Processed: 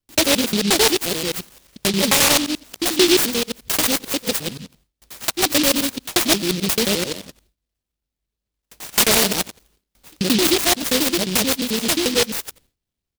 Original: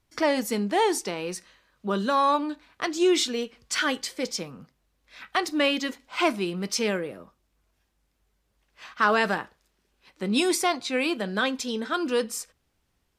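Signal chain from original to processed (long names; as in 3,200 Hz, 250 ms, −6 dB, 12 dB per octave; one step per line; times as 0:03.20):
reversed piece by piece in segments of 88 ms
pitch-shifted copies added −3 semitones −15 dB
noise gate with hold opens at −56 dBFS
in parallel at −1 dB: downward compressor, threshold −33 dBFS, peak gain reduction 15.5 dB
on the sum: short delay modulated by noise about 3,600 Hz, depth 0.28 ms
level +5 dB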